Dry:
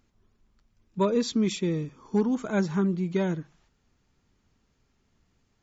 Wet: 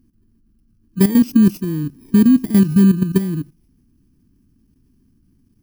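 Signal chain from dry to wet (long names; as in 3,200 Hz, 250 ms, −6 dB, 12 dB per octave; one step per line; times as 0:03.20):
samples in bit-reversed order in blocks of 32 samples
low shelf with overshoot 400 Hz +11.5 dB, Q 3
output level in coarse steps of 12 dB
level +3 dB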